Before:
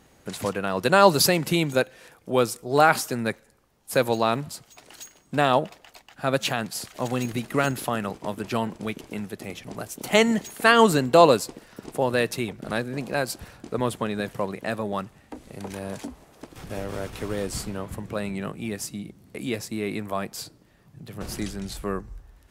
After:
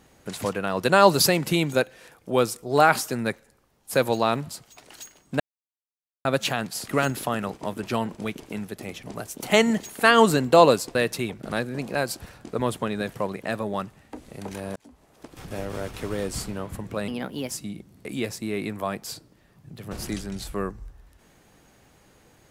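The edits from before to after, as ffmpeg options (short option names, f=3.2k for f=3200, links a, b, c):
-filter_complex "[0:a]asplit=8[a][b][c][d][e][f][g][h];[a]atrim=end=5.4,asetpts=PTS-STARTPTS,afade=t=out:st=5.396:d=0.004:c=hsin[i];[b]atrim=start=5.4:end=6.25,asetpts=PTS-STARTPTS,volume=0[j];[c]atrim=start=6.25:end=6.882,asetpts=PTS-STARTPTS,afade=t=in:d=0.004:c=hsin[k];[d]atrim=start=7.488:end=11.562[l];[e]atrim=start=12.138:end=15.95,asetpts=PTS-STARTPTS,afade=t=out:st=3.808:d=0.004:c=hsin[m];[f]atrim=start=15.95:end=18.274,asetpts=PTS-STARTPTS,afade=t=in:d=0.61[n];[g]atrim=start=18.27:end=18.8,asetpts=PTS-STARTPTS,asetrate=55125,aresample=44100,atrim=end_sample=18698,asetpts=PTS-STARTPTS[o];[h]atrim=start=18.796[p];[i][j][k]concat=n=3:v=0:a=1[q];[q][l]acrossfade=d=0.004:c1=hsin:c2=hsin[r];[m][n]concat=n=2:v=0:a=1[s];[r][s]acrossfade=d=0.004:c1=hsin:c2=hsin[t];[t][o]acrossfade=d=0.004:c1=hsin:c2=hsin[u];[u][p]acrossfade=d=0.004:c1=hsin:c2=hsin"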